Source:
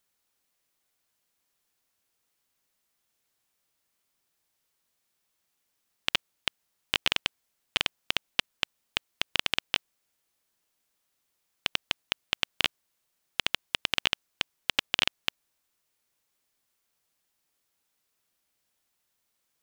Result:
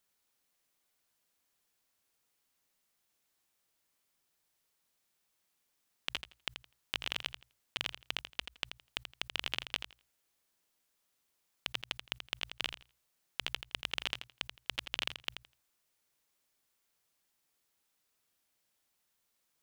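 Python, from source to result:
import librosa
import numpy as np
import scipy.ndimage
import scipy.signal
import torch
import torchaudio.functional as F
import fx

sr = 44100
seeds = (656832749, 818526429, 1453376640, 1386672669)

p1 = fx.hum_notches(x, sr, base_hz=60, count=2)
p2 = fx.level_steps(p1, sr, step_db=22)
p3 = p2 + fx.echo_feedback(p2, sr, ms=83, feedback_pct=17, wet_db=-9.0, dry=0)
y = p3 * librosa.db_to_amplitude(8.0)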